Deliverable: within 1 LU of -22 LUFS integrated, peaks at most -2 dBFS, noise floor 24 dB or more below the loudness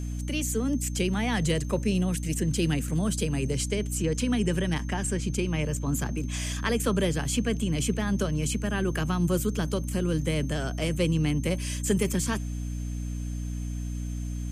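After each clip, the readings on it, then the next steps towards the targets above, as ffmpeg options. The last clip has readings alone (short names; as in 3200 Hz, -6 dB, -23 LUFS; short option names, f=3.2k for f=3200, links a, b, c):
hum 60 Hz; harmonics up to 300 Hz; hum level -30 dBFS; steady tone 6300 Hz; tone level -51 dBFS; loudness -28.0 LUFS; peak -12.5 dBFS; loudness target -22.0 LUFS
-> -af "bandreject=f=60:t=h:w=6,bandreject=f=120:t=h:w=6,bandreject=f=180:t=h:w=6,bandreject=f=240:t=h:w=6,bandreject=f=300:t=h:w=6"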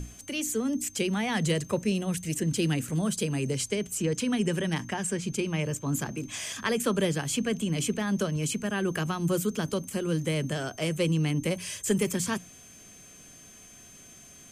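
hum none; steady tone 6300 Hz; tone level -51 dBFS
-> -af "bandreject=f=6.3k:w=30"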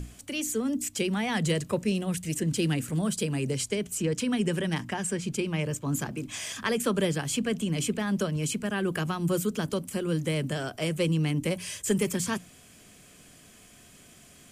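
steady tone none; loudness -29.0 LUFS; peak -13.5 dBFS; loudness target -22.0 LUFS
-> -af "volume=7dB"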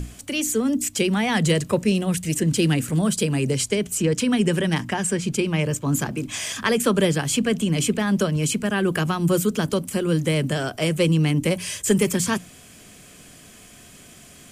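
loudness -22.0 LUFS; peak -6.5 dBFS; noise floor -47 dBFS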